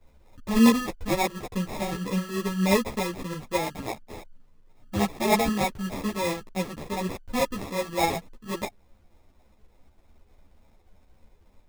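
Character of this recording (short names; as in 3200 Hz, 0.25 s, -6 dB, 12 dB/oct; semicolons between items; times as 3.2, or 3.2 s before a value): phasing stages 8, 3.4 Hz, lowest notch 510–3400 Hz; aliases and images of a low sample rate 1500 Hz, jitter 0%; tremolo saw up 8.7 Hz, depth 35%; a shimmering, thickened sound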